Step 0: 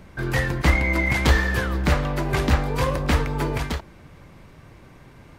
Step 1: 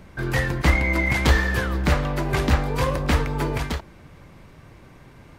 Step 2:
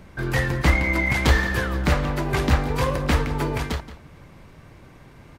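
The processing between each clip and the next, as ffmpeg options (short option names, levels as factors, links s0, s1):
-af anull
-filter_complex "[0:a]asplit=2[s0][s1];[s1]adelay=174.9,volume=0.2,highshelf=f=4000:g=-3.94[s2];[s0][s2]amix=inputs=2:normalize=0"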